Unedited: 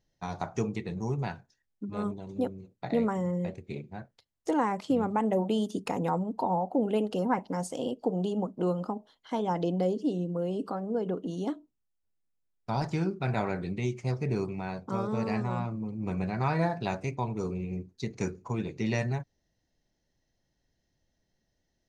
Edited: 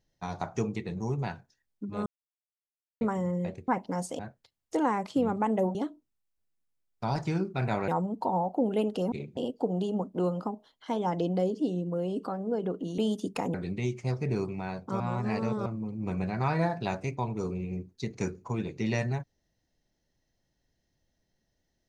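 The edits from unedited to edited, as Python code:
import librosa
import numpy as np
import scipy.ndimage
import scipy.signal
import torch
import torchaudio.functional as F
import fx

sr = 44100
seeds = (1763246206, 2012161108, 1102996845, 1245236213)

y = fx.edit(x, sr, fx.silence(start_s=2.06, length_s=0.95),
    fx.swap(start_s=3.68, length_s=0.25, other_s=7.29, other_length_s=0.51),
    fx.swap(start_s=5.49, length_s=0.56, other_s=11.41, other_length_s=2.13),
    fx.reverse_span(start_s=15.0, length_s=0.66), tone=tone)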